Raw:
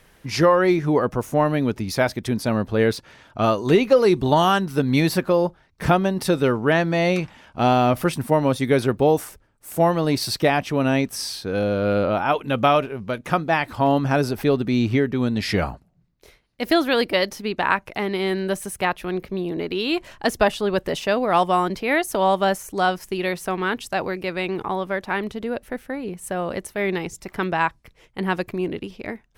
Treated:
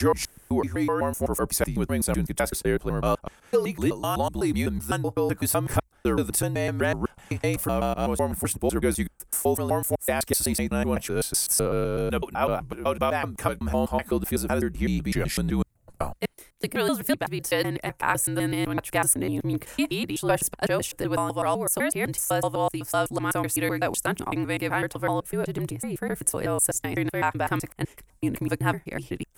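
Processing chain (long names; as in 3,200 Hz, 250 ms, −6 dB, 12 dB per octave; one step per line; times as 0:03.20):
slices reordered back to front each 126 ms, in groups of 4
speech leveller within 4 dB 0.5 s
high shelf with overshoot 6,400 Hz +12.5 dB, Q 1.5
frequency shifter −59 Hz
level −4.5 dB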